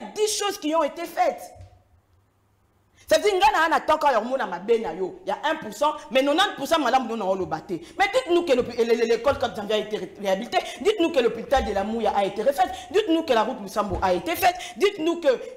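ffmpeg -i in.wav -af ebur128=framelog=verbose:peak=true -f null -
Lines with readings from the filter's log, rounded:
Integrated loudness:
  I:         -23.2 LUFS
  Threshold: -33.7 LUFS
Loudness range:
  LRA:         1.6 LU
  Threshold: -43.6 LUFS
  LRA low:   -24.3 LUFS
  LRA high:  -22.6 LUFS
True peak:
  Peak:      -10.0 dBFS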